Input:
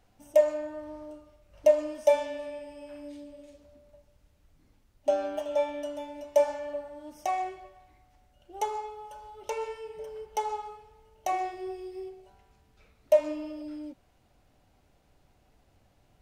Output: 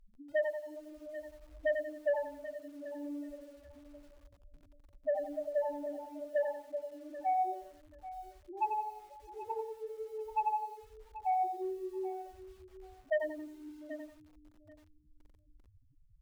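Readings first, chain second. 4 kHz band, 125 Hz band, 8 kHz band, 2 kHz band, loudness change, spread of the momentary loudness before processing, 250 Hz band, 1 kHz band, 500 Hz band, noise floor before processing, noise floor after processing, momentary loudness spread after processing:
under -10 dB, n/a, under -15 dB, 0.0 dB, -7.5 dB, 20 LU, -4.5 dB, -1.0 dB, -8.5 dB, -66 dBFS, -65 dBFS, 19 LU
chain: reverb removal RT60 0.88 s; Bessel low-pass 2000 Hz, order 2; notches 60/120/180/240/300 Hz; low-pass opened by the level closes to 510 Hz, open at -22 dBFS; dynamic EQ 880 Hz, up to +7 dB, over -43 dBFS, Q 2.5; compressor 1.5:1, threshold -56 dBFS, peak gain reduction 15 dB; loudest bins only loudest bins 2; sine folder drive 5 dB, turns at -25.5 dBFS; feedback echo 0.784 s, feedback 18%, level -14.5 dB; lo-fi delay 90 ms, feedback 35%, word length 10-bit, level -6 dB

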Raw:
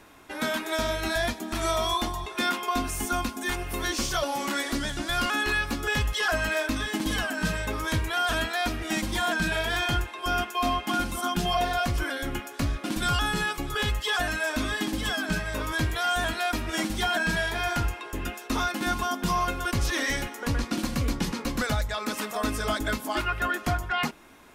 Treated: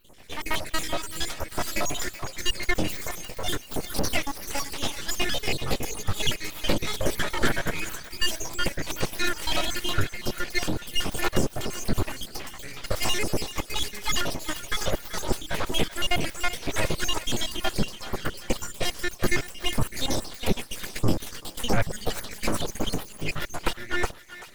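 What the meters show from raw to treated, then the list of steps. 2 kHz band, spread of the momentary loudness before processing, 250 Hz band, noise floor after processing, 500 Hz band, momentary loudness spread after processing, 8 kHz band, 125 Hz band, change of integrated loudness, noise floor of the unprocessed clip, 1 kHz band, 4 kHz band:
-4.0 dB, 4 LU, -2.0 dB, -45 dBFS, -1.0 dB, 6 LU, +3.0 dB, -1.0 dB, -1.5 dB, -41 dBFS, -6.0 dB, +1.0 dB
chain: random spectral dropouts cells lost 73%; full-wave rectifier; thinning echo 0.386 s, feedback 57%, high-pass 1000 Hz, level -12.5 dB; gain +8.5 dB

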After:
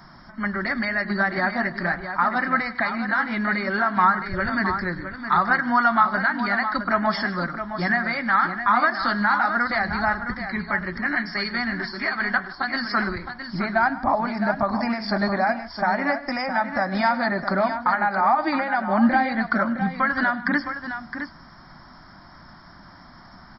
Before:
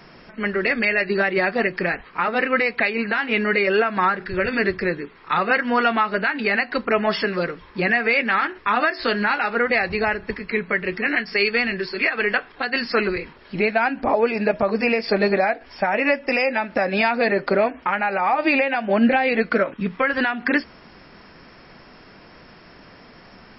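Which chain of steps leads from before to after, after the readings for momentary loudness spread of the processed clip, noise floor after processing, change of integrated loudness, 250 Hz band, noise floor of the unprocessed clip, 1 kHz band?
8 LU, -47 dBFS, -2.0 dB, -0.5 dB, -47 dBFS, +2.0 dB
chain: fixed phaser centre 1100 Hz, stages 4; on a send: tapped delay 0.102/0.154/0.664 s -18.5/-19/-9 dB; on the sum: gain +2.5 dB

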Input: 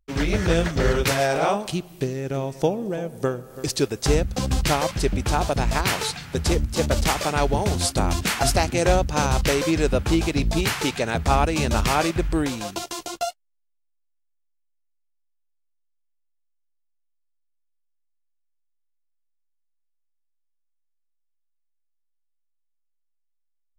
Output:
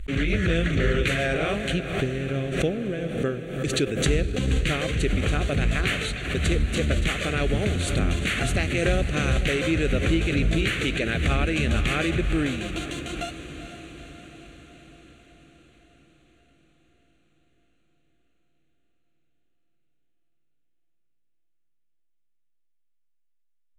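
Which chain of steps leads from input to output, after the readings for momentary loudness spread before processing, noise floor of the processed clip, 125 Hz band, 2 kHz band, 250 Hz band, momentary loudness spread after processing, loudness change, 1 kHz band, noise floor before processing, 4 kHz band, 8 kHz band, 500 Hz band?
8 LU, -66 dBFS, 0.0 dB, +1.5 dB, -1.0 dB, 8 LU, -1.5 dB, -10.0 dB, -71 dBFS, -2.0 dB, -7.5 dB, -3.5 dB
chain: high shelf 2600 Hz +9 dB; fixed phaser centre 2200 Hz, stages 4; in parallel at +0.5 dB: limiter -15.5 dBFS, peak gain reduction 9 dB; on the sum: air absorption 99 m; on a send: diffused feedback echo 0.46 s, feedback 64%, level -11 dB; on the sum: backwards sustainer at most 62 dB/s; gain -6 dB

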